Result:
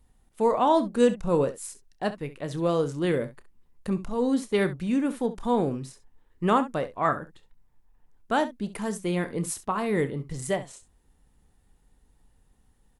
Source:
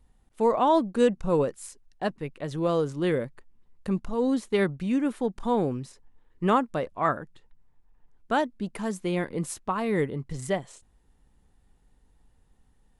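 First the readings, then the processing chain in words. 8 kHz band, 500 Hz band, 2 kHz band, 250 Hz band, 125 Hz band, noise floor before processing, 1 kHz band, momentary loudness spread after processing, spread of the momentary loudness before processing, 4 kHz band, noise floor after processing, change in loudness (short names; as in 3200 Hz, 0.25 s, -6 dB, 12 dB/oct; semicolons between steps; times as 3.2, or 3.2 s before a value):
+4.0 dB, +0.5 dB, +0.5 dB, +0.5 dB, +0.5 dB, -64 dBFS, +0.5 dB, 11 LU, 11 LU, +1.0 dB, -65 dBFS, +0.5 dB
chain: high shelf 9400 Hz +8 dB; on a send: early reflections 29 ms -13.5 dB, 67 ms -14.5 dB; on the sum: Opus 96 kbps 48000 Hz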